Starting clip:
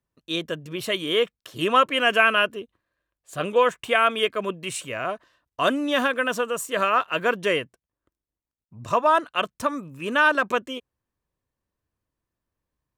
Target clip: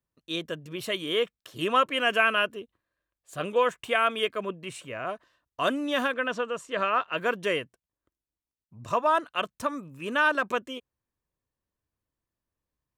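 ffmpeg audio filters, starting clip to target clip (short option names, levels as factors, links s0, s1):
-filter_complex "[0:a]asettb=1/sr,asplit=3[s0][s1][s2];[s0]atrim=end=4.444[s3];[s1]atrim=start=4.44:end=5.07,asetpts=PTS-STARTPTS,afade=t=in:d=0.004:c=qsin,afade=t=out:st=0.626:d=0.004:c=qsin,highshelf=f=3700:g=-9.5[s4];[s2]atrim=start=5.066[s5];[s3][s4]acrossfade=d=0.004:c1=hsin:c2=qsin[s6];[s6][s5]acrossfade=d=0.004:c1=qsin:c2=hsin,asplit=3[s7][s8][s9];[s7]afade=t=out:st=6.13:d=0.02[s10];[s8]lowpass=4700,afade=t=in:st=6.13:d=0.02,afade=t=out:st=7.16:d=0.02[s11];[s9]afade=t=in:st=7.16:d=0.02[s12];[s10][s11][s12]amix=inputs=3:normalize=0,volume=0.596"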